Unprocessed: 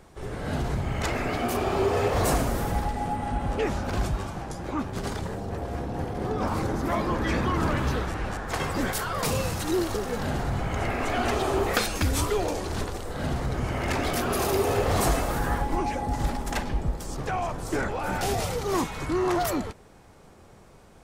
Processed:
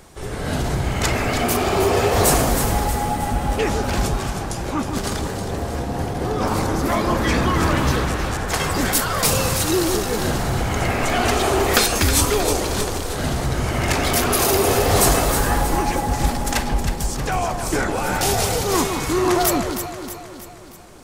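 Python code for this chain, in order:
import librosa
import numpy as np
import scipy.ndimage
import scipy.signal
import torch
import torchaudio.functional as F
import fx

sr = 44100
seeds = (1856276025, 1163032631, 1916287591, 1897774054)

p1 = fx.high_shelf(x, sr, hz=3300.0, db=9.0)
p2 = p1 + fx.echo_alternate(p1, sr, ms=158, hz=1200.0, feedback_pct=71, wet_db=-5.5, dry=0)
y = F.gain(torch.from_numpy(p2), 5.0).numpy()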